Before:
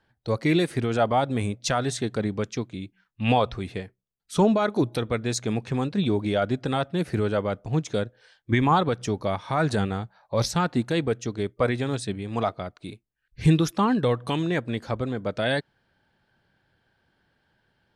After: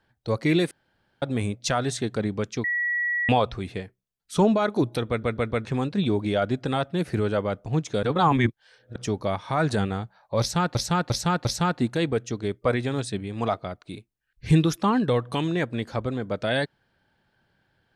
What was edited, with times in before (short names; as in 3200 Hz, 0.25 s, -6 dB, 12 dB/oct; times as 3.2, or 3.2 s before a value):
0.71–1.22 room tone
2.64–3.29 bleep 1930 Hz -22.5 dBFS
5.09 stutter in place 0.14 s, 4 plays
8.03–8.96 reverse
10.4–10.75 loop, 4 plays